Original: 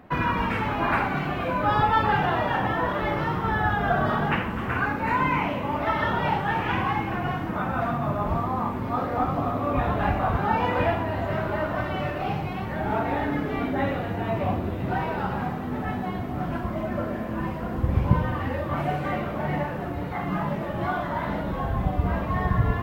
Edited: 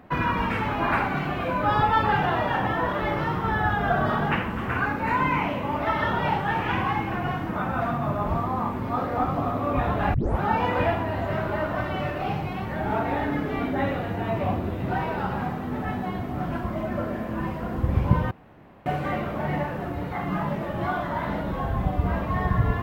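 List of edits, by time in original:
0:10.14: tape start 0.27 s
0:18.31–0:18.86: fill with room tone

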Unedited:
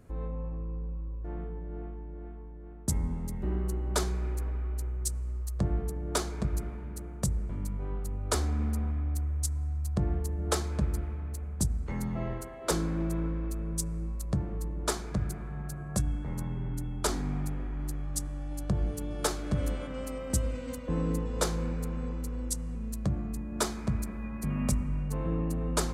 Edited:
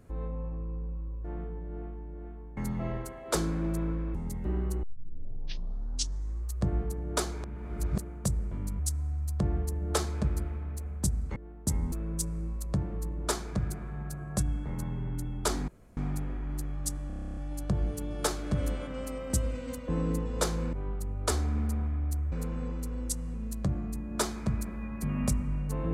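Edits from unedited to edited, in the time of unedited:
0:02.57–0:03.13: swap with 0:11.93–0:13.51
0:03.81: tape start 1.69 s
0:06.42–0:06.96: reverse
0:07.77–0:09.36: move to 0:21.73
0:17.27: splice in room tone 0.29 s
0:18.37: stutter 0.03 s, 11 plays

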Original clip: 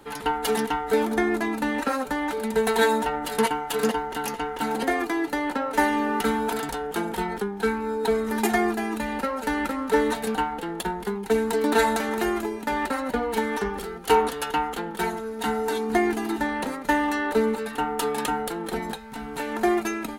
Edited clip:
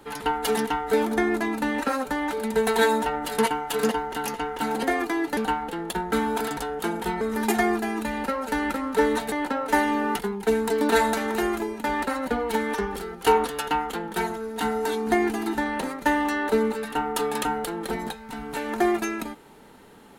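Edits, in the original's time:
0:05.37–0:06.24: swap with 0:10.27–0:11.02
0:07.33–0:08.16: remove

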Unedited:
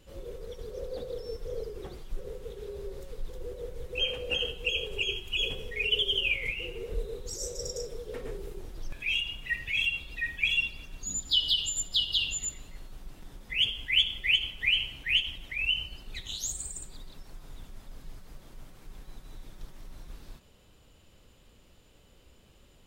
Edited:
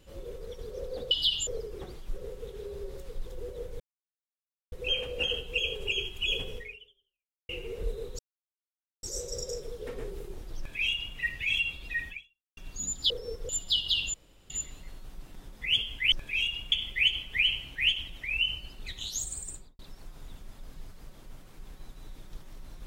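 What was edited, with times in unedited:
0:01.11–0:01.50: swap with 0:11.37–0:11.73
0:03.83: splice in silence 0.92 s
0:05.69–0:06.60: fade out exponential
0:07.30: splice in silence 0.84 s
0:08.85–0:09.45: duplicate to 0:14.00
0:10.37–0:10.84: fade out exponential
0:12.38: splice in room tone 0.36 s
0:16.80–0:17.07: fade out and dull

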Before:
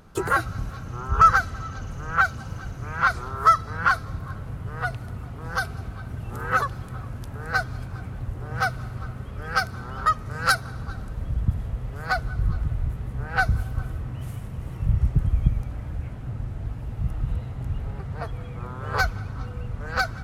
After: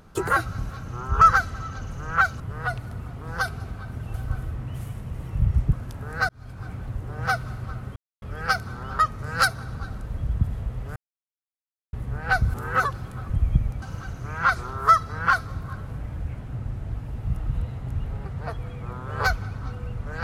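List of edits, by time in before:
0:02.40–0:04.57: move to 0:15.73
0:06.31–0:07.06: swap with 0:13.61–0:15.20
0:07.62–0:08.03: fade in
0:09.29: splice in silence 0.26 s
0:12.03–0:13.00: silence

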